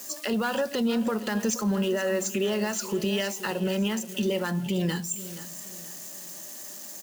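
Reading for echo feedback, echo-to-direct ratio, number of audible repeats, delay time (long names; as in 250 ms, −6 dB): 37%, −14.5 dB, 3, 475 ms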